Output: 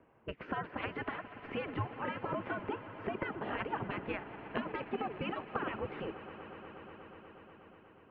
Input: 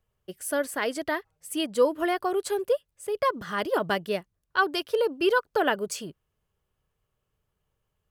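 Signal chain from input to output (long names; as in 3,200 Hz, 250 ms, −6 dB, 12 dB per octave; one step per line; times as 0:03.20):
gate on every frequency bin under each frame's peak −15 dB weak
tilt shelving filter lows +8 dB, about 1,300 Hz
downward compressor 6 to 1, threshold −53 dBFS, peak gain reduction 25.5 dB
single-sideband voice off tune −140 Hz 220–2,700 Hz
on a send: echo that builds up and dies away 121 ms, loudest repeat 5, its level −18 dB
on the sum: level +18 dB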